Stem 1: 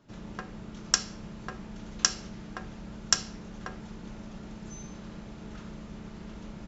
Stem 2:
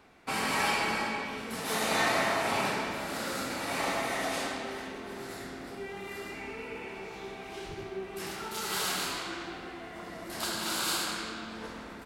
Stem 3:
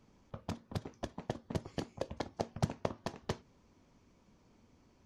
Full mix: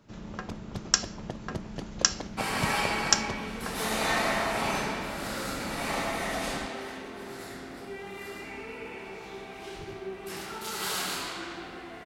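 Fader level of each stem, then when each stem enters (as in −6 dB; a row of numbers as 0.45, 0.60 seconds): +1.0, 0.0, 0.0 decibels; 0.00, 2.10, 0.00 seconds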